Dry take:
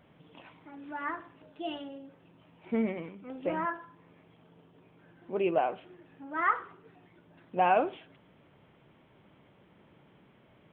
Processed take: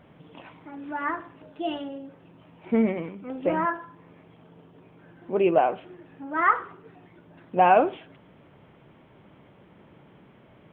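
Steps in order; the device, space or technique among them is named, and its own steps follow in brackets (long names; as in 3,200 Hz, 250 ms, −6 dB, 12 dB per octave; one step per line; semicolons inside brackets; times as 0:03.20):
behind a face mask (high-shelf EQ 3,000 Hz −7 dB)
level +7.5 dB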